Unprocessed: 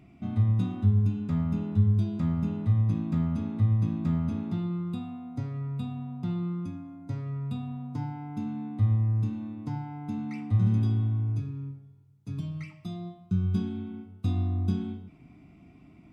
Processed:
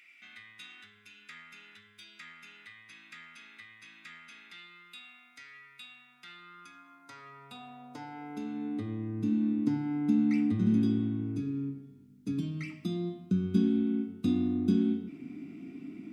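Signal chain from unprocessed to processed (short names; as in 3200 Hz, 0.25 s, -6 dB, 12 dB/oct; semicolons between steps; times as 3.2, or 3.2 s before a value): band shelf 790 Hz -10 dB 1.3 oct; in parallel at 0 dB: compressor, threshold -37 dBFS, peak gain reduction 18 dB; on the sum: hum 50 Hz, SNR 26 dB; high-pass sweep 2000 Hz -> 260 Hz, 6.07–9.34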